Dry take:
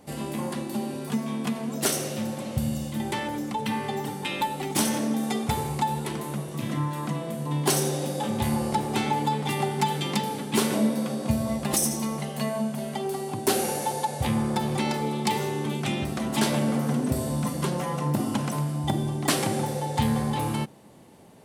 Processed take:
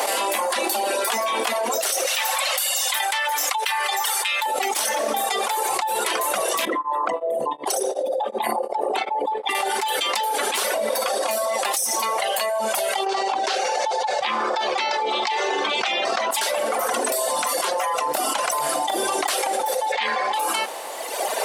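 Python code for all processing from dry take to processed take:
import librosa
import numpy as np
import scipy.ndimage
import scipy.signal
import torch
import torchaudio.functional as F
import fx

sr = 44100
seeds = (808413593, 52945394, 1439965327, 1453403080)

y = fx.chain(x, sr, fx.highpass(hz=1100.0, slope=12),
    fx.echo_single(ms=197, db=-14.0), at=(2.06, 4.46))
y = fx.chain(y, sr, fx.envelope_sharpen(power=2.0),
    fx.highpass(hz=250.0, slope=6),
    fx.tremolo_abs(hz=2.7), at=(6.65, 9.55))
y = fx.chain(y, sr, fx.lowpass(hz=5800.0, slope=24),
    fx.env_flatten(amount_pct=100), at=(13.06, 16.31))
y = fx.chain(y, sr, fx.cheby1_lowpass(hz=4500.0, order=2),
    fx.peak_eq(hz=2200.0, db=9.0, octaves=0.71), at=(19.92, 20.34))
y = fx.dereverb_blind(y, sr, rt60_s=1.3)
y = scipy.signal.sosfilt(scipy.signal.butter(4, 560.0, 'highpass', fs=sr, output='sos'), y)
y = fx.env_flatten(y, sr, amount_pct=100)
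y = F.gain(torch.from_numpy(y), -3.0).numpy()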